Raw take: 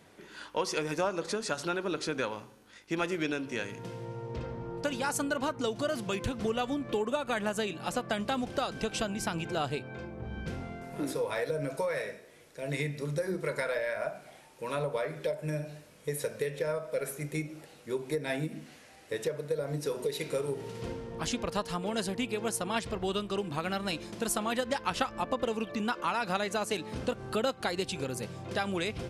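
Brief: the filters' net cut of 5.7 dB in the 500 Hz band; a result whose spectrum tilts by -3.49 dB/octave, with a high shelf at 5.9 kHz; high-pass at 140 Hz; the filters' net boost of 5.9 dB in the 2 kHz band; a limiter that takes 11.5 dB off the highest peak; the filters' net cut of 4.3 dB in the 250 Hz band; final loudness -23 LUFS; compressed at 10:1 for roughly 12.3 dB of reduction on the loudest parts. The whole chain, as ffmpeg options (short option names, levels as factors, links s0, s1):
-af "highpass=140,equalizer=f=250:t=o:g=-3,equalizer=f=500:t=o:g=-6.5,equalizer=f=2000:t=o:g=8,highshelf=f=5900:g=3,acompressor=threshold=0.0158:ratio=10,volume=9.44,alimiter=limit=0.266:level=0:latency=1"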